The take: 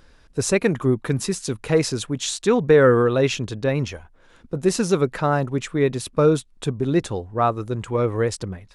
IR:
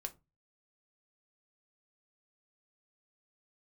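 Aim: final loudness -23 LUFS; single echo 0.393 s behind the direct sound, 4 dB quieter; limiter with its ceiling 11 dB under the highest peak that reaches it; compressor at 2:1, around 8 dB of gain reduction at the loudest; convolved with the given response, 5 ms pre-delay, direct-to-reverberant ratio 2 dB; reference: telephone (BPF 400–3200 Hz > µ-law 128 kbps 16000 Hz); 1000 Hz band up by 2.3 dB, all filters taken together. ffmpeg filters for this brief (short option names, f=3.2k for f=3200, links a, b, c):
-filter_complex "[0:a]equalizer=f=1k:t=o:g=3.5,acompressor=threshold=-24dB:ratio=2,alimiter=limit=-21dB:level=0:latency=1,aecho=1:1:393:0.631,asplit=2[a][b];[1:a]atrim=start_sample=2205,adelay=5[c];[b][c]afir=irnorm=-1:irlink=0,volume=0.5dB[d];[a][d]amix=inputs=2:normalize=0,highpass=400,lowpass=3.2k,volume=8.5dB" -ar 16000 -c:a pcm_mulaw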